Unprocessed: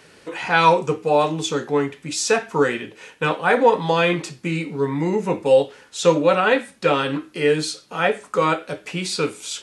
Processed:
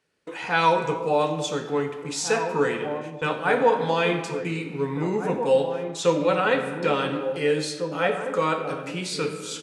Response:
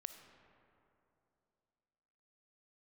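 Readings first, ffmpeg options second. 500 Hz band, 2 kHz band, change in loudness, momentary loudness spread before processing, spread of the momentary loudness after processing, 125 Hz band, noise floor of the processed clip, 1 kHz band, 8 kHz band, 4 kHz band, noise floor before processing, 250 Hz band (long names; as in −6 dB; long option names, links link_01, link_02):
−4.0 dB, −4.5 dB, −4.0 dB, 10 LU, 8 LU, −4.0 dB, −37 dBFS, −4.0 dB, −5.0 dB, −4.5 dB, −52 dBFS, −4.0 dB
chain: -filter_complex "[0:a]agate=range=-20dB:threshold=-40dB:ratio=16:detection=peak,asplit=2[link_01][link_02];[link_02]adelay=1749,volume=-8dB,highshelf=frequency=4000:gain=-39.4[link_03];[link_01][link_03]amix=inputs=2:normalize=0[link_04];[1:a]atrim=start_sample=2205,afade=type=out:start_time=0.43:duration=0.01,atrim=end_sample=19404[link_05];[link_04][link_05]afir=irnorm=-1:irlink=0"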